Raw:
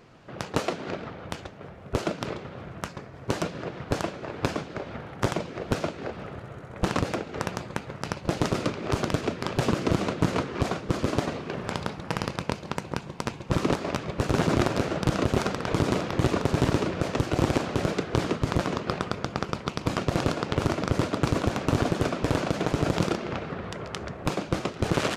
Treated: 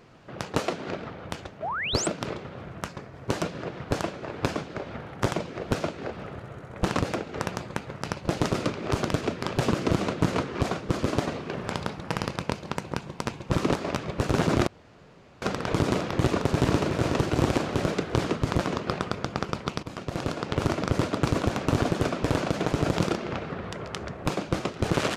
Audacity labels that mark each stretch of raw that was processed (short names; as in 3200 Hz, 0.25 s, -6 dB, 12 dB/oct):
1.620000	2.070000	painted sound rise 580–8700 Hz -30 dBFS
14.670000	15.420000	room tone
16.290000	16.910000	echo throw 0.37 s, feedback 55%, level -5.5 dB
19.830000	20.670000	fade in, from -13 dB